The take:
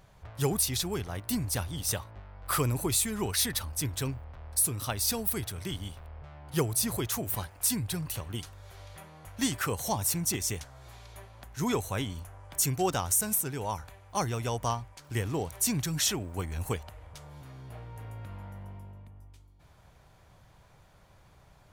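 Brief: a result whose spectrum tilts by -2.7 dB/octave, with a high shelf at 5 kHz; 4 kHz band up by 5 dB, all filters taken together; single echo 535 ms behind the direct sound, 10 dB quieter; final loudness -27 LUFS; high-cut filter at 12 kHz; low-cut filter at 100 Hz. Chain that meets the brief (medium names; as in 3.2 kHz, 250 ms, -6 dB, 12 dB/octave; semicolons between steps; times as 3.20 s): high-pass 100 Hz; low-pass 12 kHz; peaking EQ 4 kHz +3.5 dB; treble shelf 5 kHz +5.5 dB; delay 535 ms -10 dB; trim +0.5 dB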